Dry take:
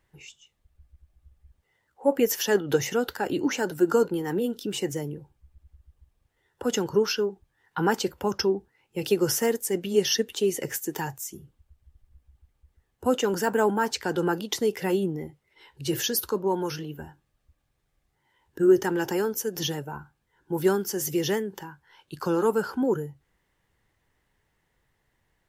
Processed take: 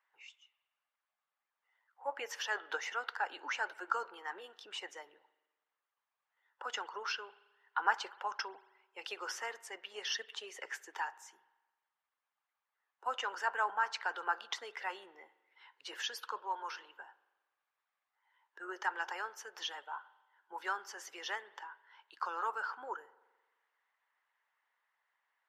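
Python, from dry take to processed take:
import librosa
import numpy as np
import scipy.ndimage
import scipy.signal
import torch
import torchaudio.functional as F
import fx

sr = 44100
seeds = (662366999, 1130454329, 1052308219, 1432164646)

y = fx.ladder_highpass(x, sr, hz=830.0, resonance_pct=30)
y = fx.spacing_loss(y, sr, db_at_10k=25)
y = fx.rev_spring(y, sr, rt60_s=1.2, pass_ms=(42,), chirp_ms=30, drr_db=17.0)
y = fx.hpss(y, sr, part='harmonic', gain_db=-5)
y = y * librosa.db_to_amplitude(6.5)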